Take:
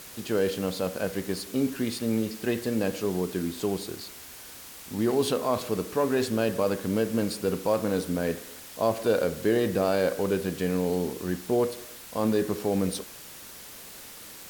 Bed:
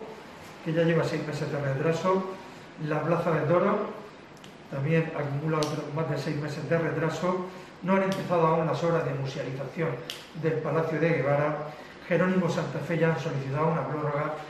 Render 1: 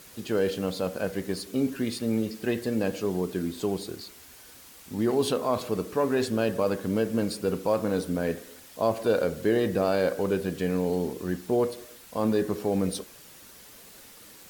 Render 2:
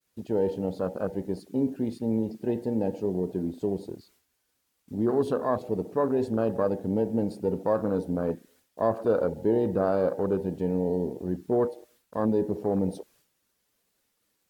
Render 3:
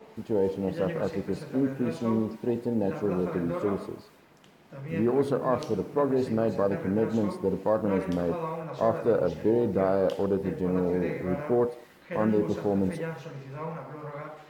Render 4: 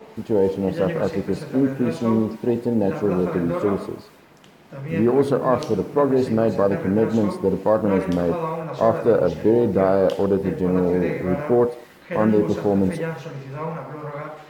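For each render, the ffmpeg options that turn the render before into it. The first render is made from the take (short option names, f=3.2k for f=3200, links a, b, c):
-af "afftdn=nr=6:nf=-45"
-af "afwtdn=0.0282,agate=range=-33dB:threshold=-58dB:ratio=3:detection=peak"
-filter_complex "[1:a]volume=-10dB[a];[0:a][a]amix=inputs=2:normalize=0"
-af "volume=7dB"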